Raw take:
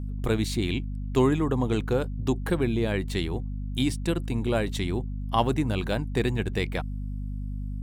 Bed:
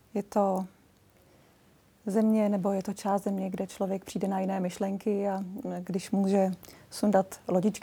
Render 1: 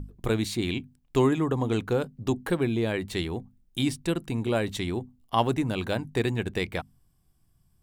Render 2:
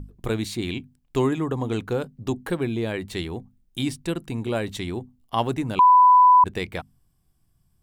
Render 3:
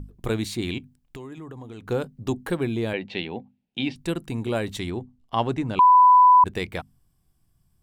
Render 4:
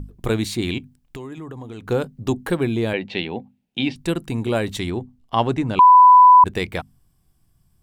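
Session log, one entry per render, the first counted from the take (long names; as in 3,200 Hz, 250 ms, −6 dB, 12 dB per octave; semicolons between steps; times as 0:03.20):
mains-hum notches 50/100/150/200/250 Hz
0:05.79–0:06.44: beep over 997 Hz −10 dBFS
0:00.78–0:01.89: downward compressor 8 to 1, threshold −36 dBFS; 0:02.93–0:03.96: loudspeaker in its box 180–4,200 Hz, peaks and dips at 220 Hz +4 dB, 340 Hz −4 dB, 540 Hz +5 dB, 810 Hz +6 dB, 1,200 Hz −10 dB, 2,600 Hz +8 dB; 0:04.90–0:05.95: high-frequency loss of the air 72 metres
level +4.5 dB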